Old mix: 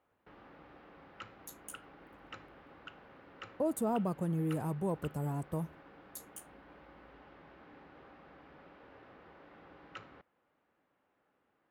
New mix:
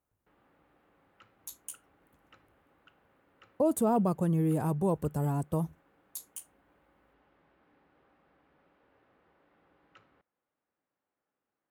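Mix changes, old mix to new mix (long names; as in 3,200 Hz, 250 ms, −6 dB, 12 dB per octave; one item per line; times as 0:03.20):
speech +6.0 dB
background −11.5 dB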